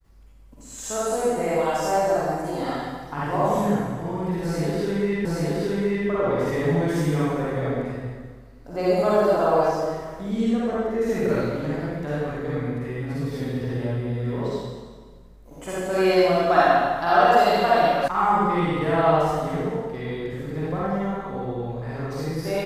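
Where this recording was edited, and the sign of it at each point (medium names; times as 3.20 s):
5.25 s: repeat of the last 0.82 s
18.08 s: sound stops dead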